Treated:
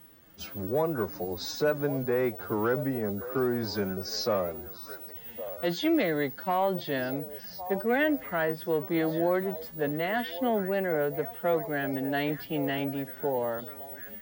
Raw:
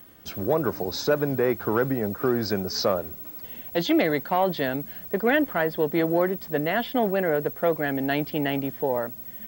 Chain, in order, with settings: wow and flutter 27 cents; delay with a stepping band-pass 0.743 s, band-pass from 640 Hz, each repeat 1.4 oct, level -10 dB; time stretch by phase-locked vocoder 1.5×; gain -4.5 dB

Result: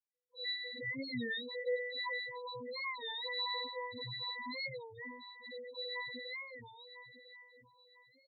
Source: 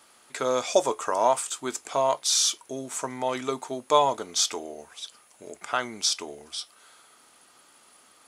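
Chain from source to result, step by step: minimum comb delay 1.1 ms; in parallel at +2.5 dB: compressor 20:1, threshold -33 dBFS, peak gain reduction 17 dB; on the sum: fuzz box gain 43 dB, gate -42 dBFS; spectral gate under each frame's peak -20 dB weak; 1.46–2.24 resonant low shelf 270 Hz -11 dB, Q 3; octave resonator B, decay 0.8 s; on a send: feedback echo 1.001 s, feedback 31%, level -12.5 dB; on the sum: loudest bins only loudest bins 4; record warp 33 1/3 rpm, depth 160 cents; gain +16.5 dB

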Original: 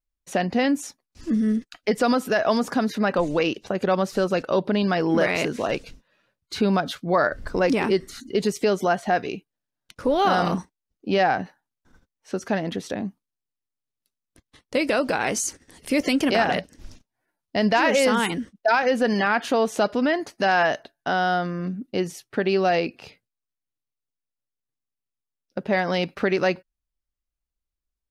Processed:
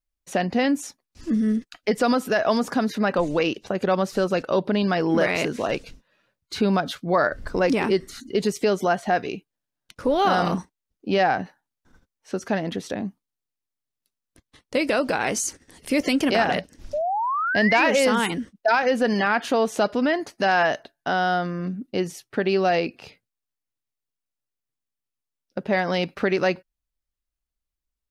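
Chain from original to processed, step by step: painted sound rise, 16.93–17.85, 570–2600 Hz -24 dBFS

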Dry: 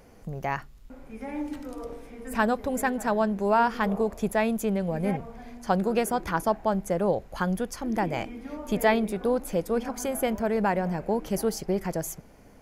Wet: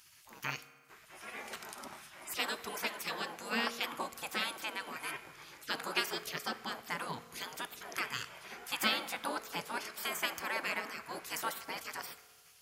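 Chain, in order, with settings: HPF 360 Hz 12 dB/oct; spectral gate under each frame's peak -20 dB weak; reverb RT60 1.7 s, pre-delay 3 ms, DRR 13.5 dB; gain +7 dB

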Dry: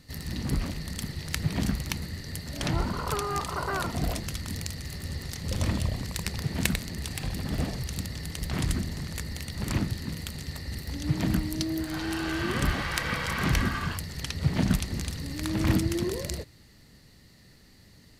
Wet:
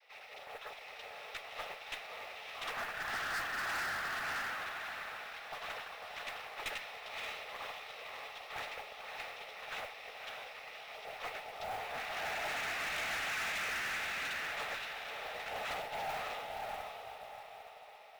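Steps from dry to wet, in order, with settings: in parallel at -0.5 dB: compressor, threshold -39 dBFS, peak gain reduction 19 dB; on the sum: mistuned SSB +350 Hz 340–3200 Hz; chorus voices 6, 0.24 Hz, delay 12 ms, depth 3.8 ms; noise vocoder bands 12; notch 950 Hz, Q 9.8; on a send: diffused feedback echo 0.589 s, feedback 49%, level -3 dB; on the sum: dynamic EQ 1800 Hz, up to +6 dB, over -41 dBFS, Q 0.72; modulation noise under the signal 20 dB; tube stage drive 32 dB, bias 0.45; gain -2.5 dB

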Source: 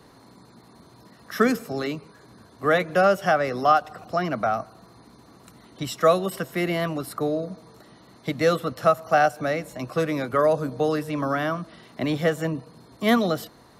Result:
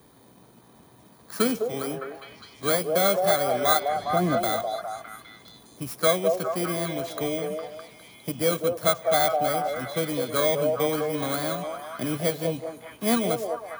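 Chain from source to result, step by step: FFT order left unsorted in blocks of 16 samples; 3.9–4.37 tilt shelf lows +8 dB, about 1400 Hz; delay with a stepping band-pass 0.204 s, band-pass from 560 Hz, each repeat 0.7 oct, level -0.5 dB; gain -3.5 dB

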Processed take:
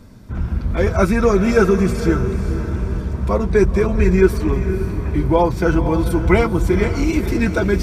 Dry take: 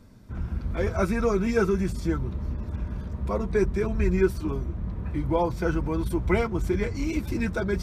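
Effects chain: diffused feedback echo 0.503 s, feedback 43%, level -10 dB; gain +9 dB

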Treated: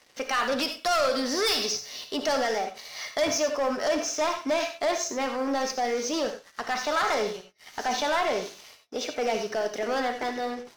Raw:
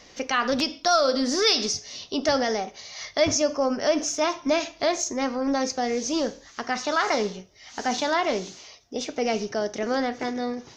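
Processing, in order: HPF 600 Hz 6 dB/oct; high shelf 4500 Hz -8.5 dB; notch 6800 Hz, Q 18; sample leveller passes 3; non-linear reverb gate 0.11 s rising, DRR 7 dB; gain -7.5 dB

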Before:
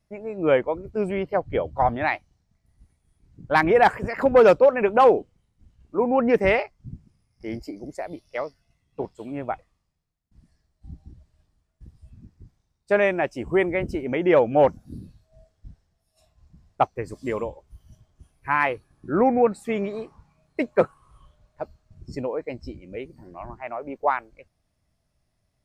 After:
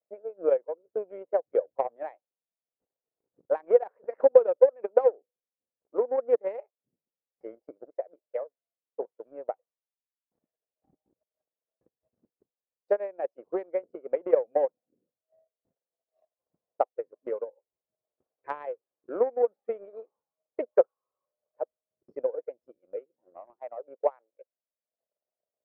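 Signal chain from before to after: added harmonics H 3 -15 dB, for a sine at -7 dBFS; compressor 2.5:1, threshold -25 dBFS, peak gain reduction 9.5 dB; ladder band-pass 560 Hz, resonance 65%; transient shaper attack +11 dB, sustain -10 dB; gain +1.5 dB

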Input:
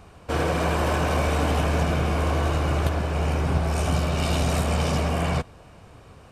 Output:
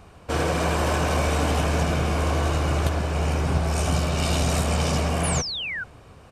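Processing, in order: outdoor echo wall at 83 m, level -27 dB; dynamic EQ 6800 Hz, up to +5 dB, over -51 dBFS, Q 0.8; painted sound fall, 5.23–5.84, 1400–11000 Hz -30 dBFS

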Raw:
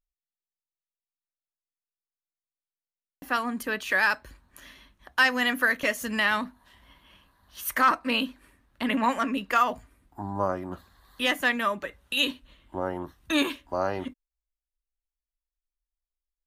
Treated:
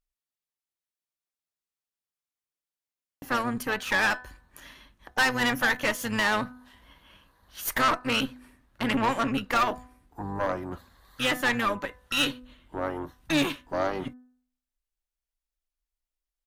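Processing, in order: harmoniser -12 st -10 dB; de-hum 250.6 Hz, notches 7; tube stage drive 22 dB, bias 0.65; gain +4 dB

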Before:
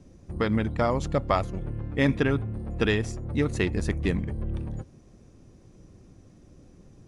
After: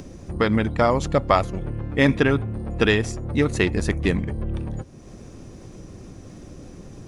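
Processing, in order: low shelf 270 Hz -4 dB; in parallel at +1.5 dB: upward compressor, threshold -32 dBFS

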